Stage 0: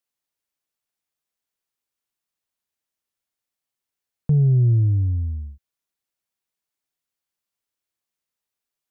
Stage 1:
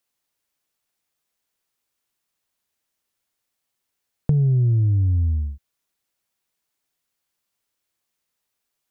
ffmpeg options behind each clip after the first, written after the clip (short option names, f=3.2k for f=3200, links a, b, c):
-af "acompressor=threshold=-24dB:ratio=6,volume=7dB"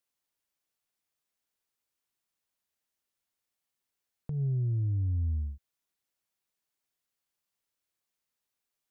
-af "alimiter=limit=-18.5dB:level=0:latency=1:release=271,volume=-7.5dB"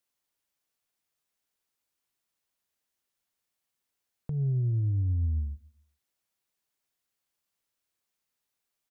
-af "aecho=1:1:137|274|411:0.0708|0.0269|0.0102,volume=2dB"